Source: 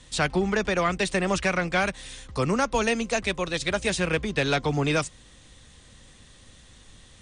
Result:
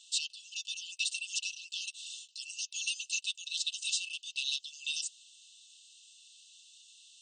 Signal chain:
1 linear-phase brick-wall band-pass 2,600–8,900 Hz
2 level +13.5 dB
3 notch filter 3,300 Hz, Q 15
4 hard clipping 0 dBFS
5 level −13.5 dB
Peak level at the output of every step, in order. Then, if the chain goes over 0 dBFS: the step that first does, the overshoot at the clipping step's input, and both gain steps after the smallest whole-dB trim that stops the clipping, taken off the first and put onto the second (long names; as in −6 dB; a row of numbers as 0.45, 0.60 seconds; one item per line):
−18.0, −4.5, −5.0, −5.0, −18.5 dBFS
no step passes full scale